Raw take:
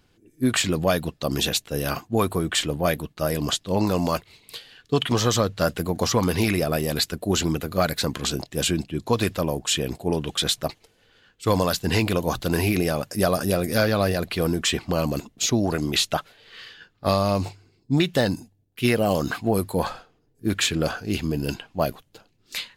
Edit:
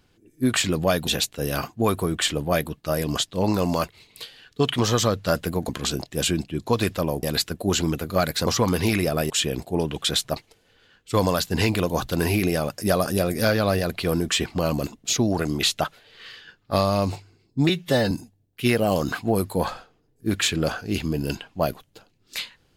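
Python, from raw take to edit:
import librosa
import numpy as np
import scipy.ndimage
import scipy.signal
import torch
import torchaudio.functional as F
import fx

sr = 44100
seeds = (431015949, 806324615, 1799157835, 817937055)

y = fx.edit(x, sr, fx.cut(start_s=1.07, length_s=0.33),
    fx.swap(start_s=6.02, length_s=0.83, other_s=8.09, other_length_s=1.54),
    fx.stretch_span(start_s=18.02, length_s=0.28, factor=1.5), tone=tone)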